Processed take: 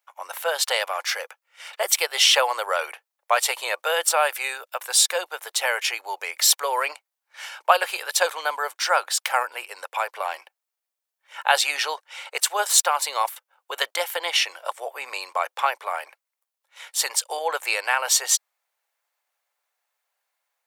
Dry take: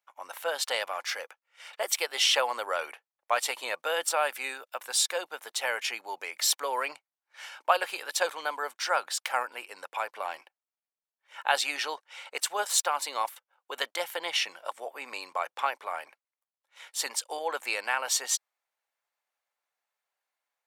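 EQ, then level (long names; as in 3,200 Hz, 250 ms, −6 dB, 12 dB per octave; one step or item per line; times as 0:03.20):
high-pass filter 420 Hz 24 dB per octave
high-shelf EQ 9,300 Hz +5 dB
+6.5 dB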